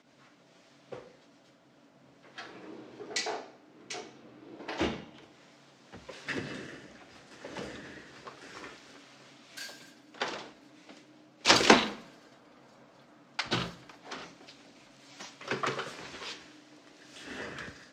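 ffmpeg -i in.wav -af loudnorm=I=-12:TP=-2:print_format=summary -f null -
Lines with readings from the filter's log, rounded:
Input Integrated:    -32.8 LUFS
Input True Peak:      -2.7 dBTP
Input LRA:            15.0 LU
Input Threshold:     -46.0 LUFS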